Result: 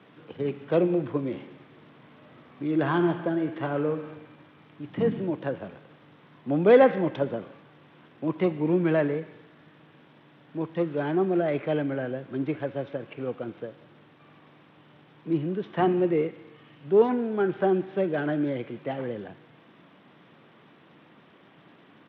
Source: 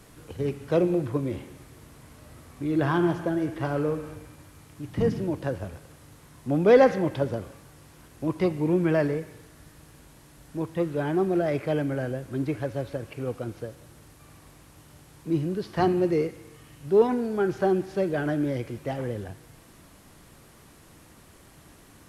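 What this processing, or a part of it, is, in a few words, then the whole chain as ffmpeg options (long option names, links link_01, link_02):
Bluetooth headset: -af "highpass=frequency=150:width=0.5412,highpass=frequency=150:width=1.3066,aresample=8000,aresample=44100" -ar 32000 -c:a sbc -b:a 64k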